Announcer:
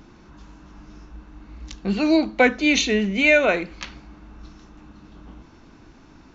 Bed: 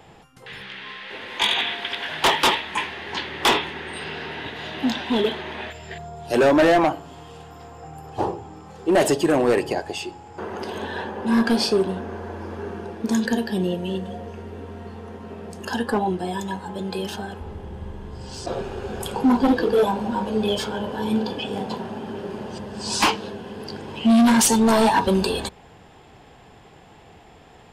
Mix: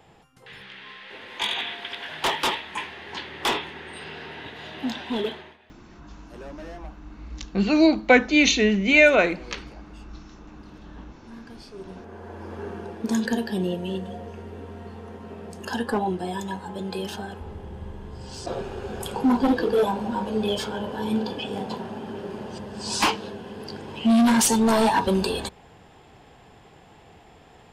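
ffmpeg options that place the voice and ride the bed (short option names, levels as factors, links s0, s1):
-filter_complex "[0:a]adelay=5700,volume=1.12[s0];[1:a]volume=6.68,afade=t=out:st=5.28:d=0.3:silence=0.112202,afade=t=in:st=11.73:d=0.9:silence=0.0749894[s1];[s0][s1]amix=inputs=2:normalize=0"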